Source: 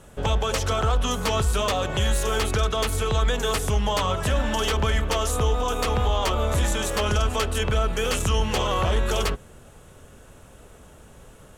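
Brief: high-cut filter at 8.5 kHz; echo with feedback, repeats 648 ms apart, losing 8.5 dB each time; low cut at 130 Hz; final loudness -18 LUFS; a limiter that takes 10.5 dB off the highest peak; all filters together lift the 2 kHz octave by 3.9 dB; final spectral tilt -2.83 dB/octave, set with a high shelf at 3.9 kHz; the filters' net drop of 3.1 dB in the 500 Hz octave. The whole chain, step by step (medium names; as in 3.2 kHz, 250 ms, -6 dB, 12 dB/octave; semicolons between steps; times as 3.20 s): high-pass 130 Hz; low-pass 8.5 kHz; peaking EQ 500 Hz -4 dB; peaking EQ 2 kHz +4.5 dB; treble shelf 3.9 kHz +3.5 dB; peak limiter -20.5 dBFS; feedback delay 648 ms, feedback 38%, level -8.5 dB; trim +10.5 dB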